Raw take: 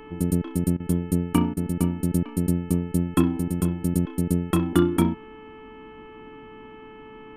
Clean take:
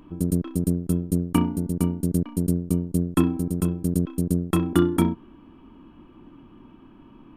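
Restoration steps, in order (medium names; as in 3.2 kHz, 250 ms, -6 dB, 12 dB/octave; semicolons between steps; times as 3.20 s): de-hum 435.3 Hz, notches 7; interpolate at 0.77/1.54 s, 28 ms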